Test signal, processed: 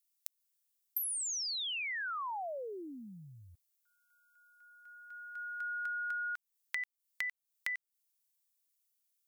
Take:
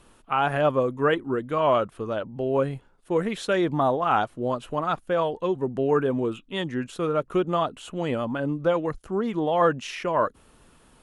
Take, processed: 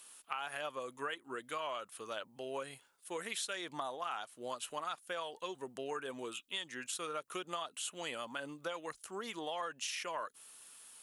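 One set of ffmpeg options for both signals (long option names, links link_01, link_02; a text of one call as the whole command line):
ffmpeg -i in.wav -af "aderivative,acompressor=threshold=-44dB:ratio=12,volume=8dB" out.wav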